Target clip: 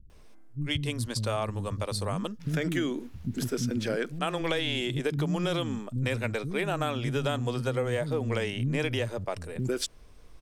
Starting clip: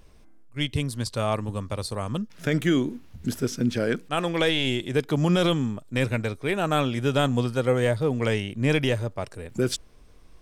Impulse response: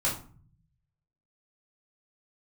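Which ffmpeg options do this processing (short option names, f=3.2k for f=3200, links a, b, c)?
-filter_complex "[0:a]acrossover=split=240[a][b];[b]adelay=100[c];[a][c]amix=inputs=2:normalize=0,acompressor=threshold=-25dB:ratio=6"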